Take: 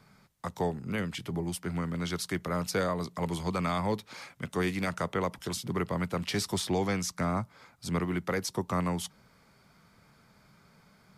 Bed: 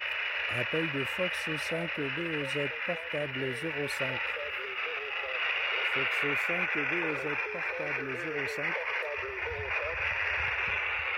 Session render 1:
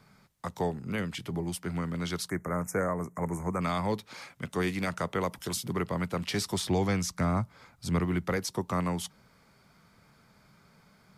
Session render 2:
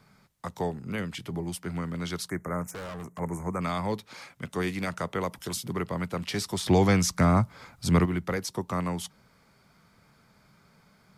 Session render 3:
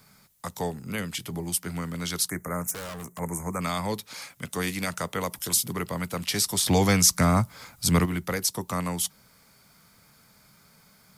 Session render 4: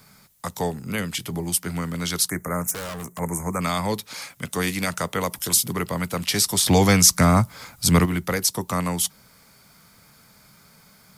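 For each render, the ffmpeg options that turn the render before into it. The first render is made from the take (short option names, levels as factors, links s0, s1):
-filter_complex "[0:a]asplit=3[s0][s1][s2];[s0]afade=t=out:st=2.28:d=0.02[s3];[s1]asuperstop=centerf=3700:order=8:qfactor=0.88,afade=t=in:st=2.28:d=0.02,afade=t=out:st=3.6:d=0.02[s4];[s2]afade=t=in:st=3.6:d=0.02[s5];[s3][s4][s5]amix=inputs=3:normalize=0,asettb=1/sr,asplit=3[s6][s7][s8];[s6]atrim=end=5.144[s9];[s7]atrim=start=5.14:end=5.73,asetpts=PTS-STARTPTS,afade=t=in:d=0.004:c=qsin,afade=t=out:st=0.586:d=0.004:c=qsin,highshelf=f=8600:g=8[s10];[s8]atrim=start=5.726[s11];[s9][s10]acrossfade=d=0.004:c1=hsin:c2=qsin[s12];[s12][s11]acrossfade=d=0.004:c1=qsin:c2=hsin,asettb=1/sr,asplit=3[s13][s14][s15];[s13]atrim=end=6.634[s16];[s14]atrim=start=6.63:end=8.37,asetpts=PTS-STARTPTS,afade=t=in:d=0.004:c=qsin,afade=t=out:st=1.736:d=0.004:c=qsin,lowshelf=f=100:g=11[s17];[s15]atrim=start=8.366[s18];[s16][s17]acrossfade=d=0.004:c1=hsin:c2=qsin[s19];[s19][s18]acrossfade=d=0.004:c1=qsin:c2=hsin"
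-filter_complex "[0:a]asplit=3[s0][s1][s2];[s0]afade=t=out:st=2.67:d=0.02[s3];[s1]asoftclip=type=hard:threshold=0.015,afade=t=in:st=2.67:d=0.02,afade=t=out:st=3.18:d=0.02[s4];[s2]afade=t=in:st=3.18:d=0.02[s5];[s3][s4][s5]amix=inputs=3:normalize=0,asettb=1/sr,asplit=3[s6][s7][s8];[s6]atrim=end=6.664[s9];[s7]atrim=start=6.66:end=8.06,asetpts=PTS-STARTPTS,afade=t=in:d=0.004:c=qsin,afade=t=out:st=1.396:d=0.004:c=qsin,acontrast=64[s10];[s8]atrim=start=8.056[s11];[s9][s10]acrossfade=d=0.004:c1=hsin:c2=qsin[s12];[s12][s11]acrossfade=d=0.004:c1=qsin:c2=hsin"
-af "aemphasis=mode=production:type=75kf,bandreject=f=370:w=12"
-af "volume=1.68"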